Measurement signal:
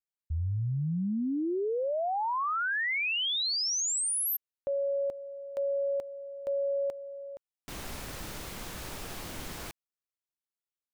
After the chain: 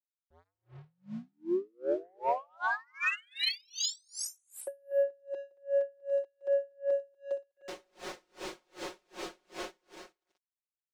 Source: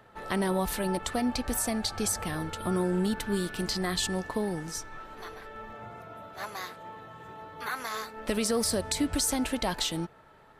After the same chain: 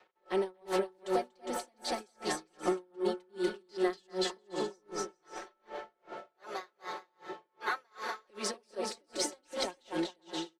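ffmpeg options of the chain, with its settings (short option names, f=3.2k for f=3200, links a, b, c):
-filter_complex "[0:a]acrossover=split=220|1400[a][b][c];[a]alimiter=level_in=9dB:limit=-24dB:level=0:latency=1,volume=-9dB[d];[d][b][c]amix=inputs=3:normalize=0,equalizer=f=370:w=1.1:g=10,asplit=2[e][f];[f]aecho=0:1:240|408|525.6|607.9|665.5:0.631|0.398|0.251|0.158|0.1[g];[e][g]amix=inputs=2:normalize=0,aeval=exprs='sgn(val(0))*max(abs(val(0))-0.00251,0)':c=same,acompressor=threshold=-31dB:ratio=6:attack=76:release=34:knee=6:detection=peak,acrossover=split=340 7400:gain=0.126 1 0.112[h][i][j];[h][i][j]amix=inputs=3:normalize=0,aecho=1:1:5.5:0.92,asoftclip=type=tanh:threshold=-17.5dB,aeval=exprs='val(0)*pow(10,-39*(0.5-0.5*cos(2*PI*2.6*n/s))/20)':c=same"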